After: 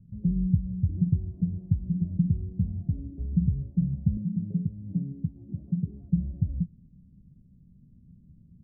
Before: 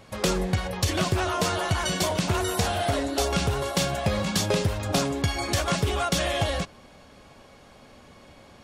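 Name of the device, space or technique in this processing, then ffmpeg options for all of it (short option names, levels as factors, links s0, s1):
the neighbour's flat through the wall: -filter_complex "[0:a]lowpass=f=190:w=0.5412,lowpass=f=190:w=1.3066,equalizer=f=170:t=o:w=0.56:g=8,asettb=1/sr,asplit=3[s0][s1][s2];[s0]atrim=end=4.174[s3];[s1]atrim=start=4.17:end=6.03,asetpts=PTS-STARTPTS,afade=t=in:d=0.004:c=qsin,afade=t=out:st=1.856:d=0.004:c=qsin,highpass=170[s4];[s2]atrim=start=6.026[s5];[s3][s4]acrossfade=d=0.004:c1=hsin:c2=qsin[s6];[s6][s5]acrossfade=d=0.004:c1=qsin:c2=hsin"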